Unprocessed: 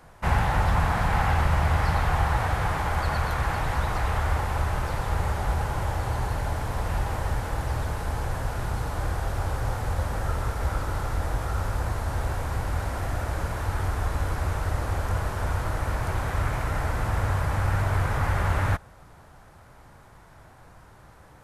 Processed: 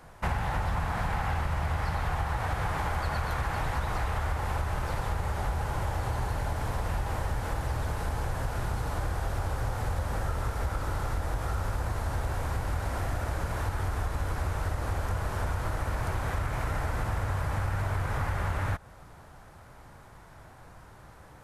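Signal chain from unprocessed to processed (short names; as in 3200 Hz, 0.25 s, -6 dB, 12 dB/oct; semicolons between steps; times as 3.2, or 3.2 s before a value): compressor, threshold -26 dBFS, peak gain reduction 9 dB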